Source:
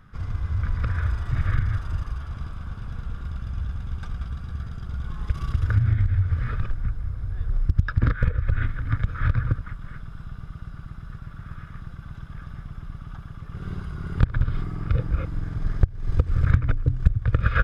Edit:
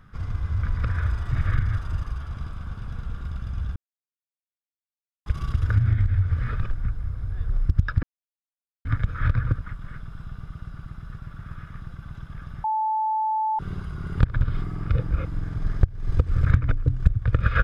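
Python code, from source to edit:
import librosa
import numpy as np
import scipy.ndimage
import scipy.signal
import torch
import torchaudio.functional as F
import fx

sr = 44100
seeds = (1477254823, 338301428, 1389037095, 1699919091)

y = fx.edit(x, sr, fx.silence(start_s=3.76, length_s=1.5),
    fx.silence(start_s=8.03, length_s=0.82),
    fx.bleep(start_s=12.64, length_s=0.95, hz=872.0, db=-21.0), tone=tone)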